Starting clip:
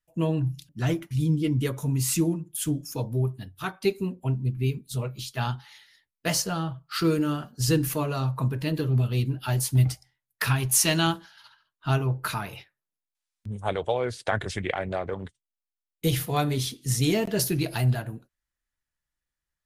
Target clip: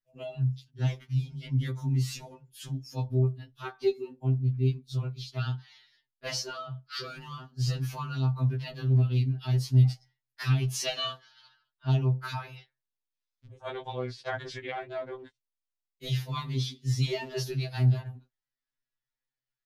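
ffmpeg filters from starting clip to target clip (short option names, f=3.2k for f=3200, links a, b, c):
-af "highshelf=f=6.8k:t=q:w=1.5:g=-11,afftfilt=real='re*2.45*eq(mod(b,6),0)':imag='im*2.45*eq(mod(b,6),0)':win_size=2048:overlap=0.75,volume=-5dB"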